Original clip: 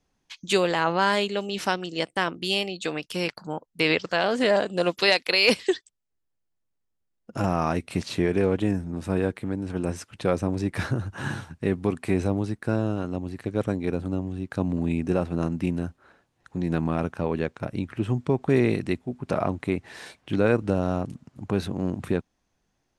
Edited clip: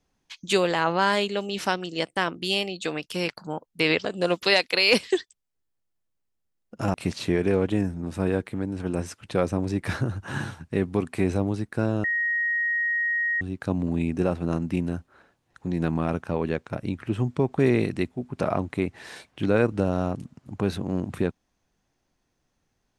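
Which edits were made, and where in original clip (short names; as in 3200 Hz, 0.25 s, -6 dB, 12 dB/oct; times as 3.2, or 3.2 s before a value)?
4.05–4.61 cut
7.5–7.84 cut
12.94–14.31 bleep 1880 Hz -22 dBFS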